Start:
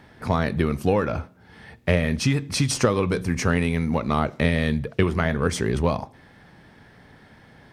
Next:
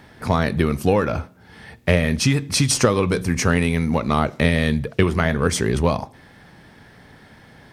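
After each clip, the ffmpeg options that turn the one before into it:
ffmpeg -i in.wav -af "highshelf=frequency=4800:gain=5.5,volume=3dB" out.wav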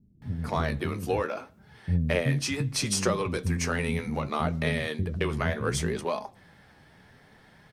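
ffmpeg -i in.wav -filter_complex "[0:a]flanger=delay=4.7:depth=9.6:regen=48:speed=0.67:shape=sinusoidal,acrossover=split=260[link_01][link_02];[link_02]adelay=220[link_03];[link_01][link_03]amix=inputs=2:normalize=0,volume=-4dB" out.wav

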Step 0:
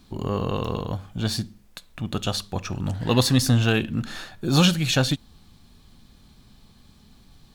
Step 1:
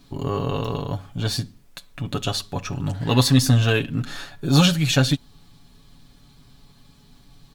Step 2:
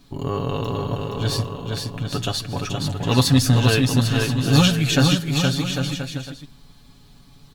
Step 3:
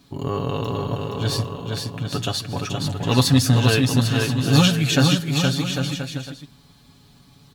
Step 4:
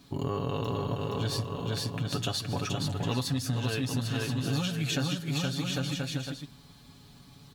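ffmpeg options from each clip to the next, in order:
ffmpeg -i in.wav -af "aecho=1:1:7.1:0.65" out.wav
ffmpeg -i in.wav -af "aecho=1:1:470|799|1029|1191|1303:0.631|0.398|0.251|0.158|0.1" out.wav
ffmpeg -i in.wav -af "highpass=60" out.wav
ffmpeg -i in.wav -af "acompressor=threshold=-26dB:ratio=6,volume=-1.5dB" out.wav

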